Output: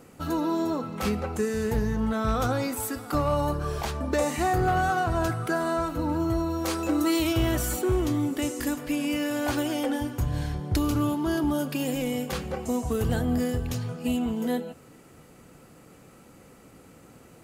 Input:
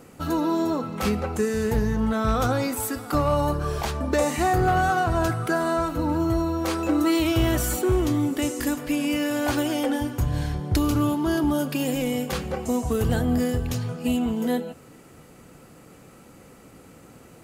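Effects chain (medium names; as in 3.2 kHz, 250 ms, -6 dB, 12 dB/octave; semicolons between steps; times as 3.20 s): 6.50–7.33 s: tone controls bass 0 dB, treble +5 dB; trim -3 dB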